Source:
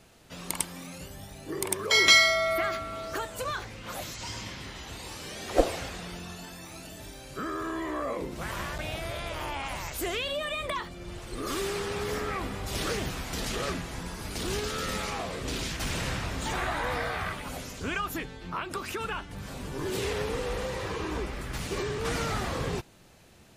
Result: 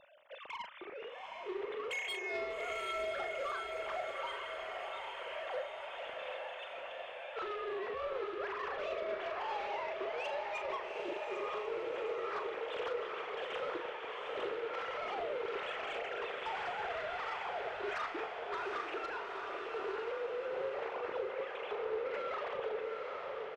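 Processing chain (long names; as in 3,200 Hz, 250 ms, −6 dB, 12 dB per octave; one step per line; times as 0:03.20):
three sine waves on the formant tracks
low-shelf EQ 460 Hz +11 dB
downward compressor 12 to 1, threshold −37 dBFS, peak gain reduction 29 dB
soft clipping −38.5 dBFS, distortion −14 dB
double-tracking delay 39 ms −8 dB
feedback delay with all-pass diffusion 804 ms, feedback 60%, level −3 dB
highs frequency-modulated by the lows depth 0.12 ms
level +2.5 dB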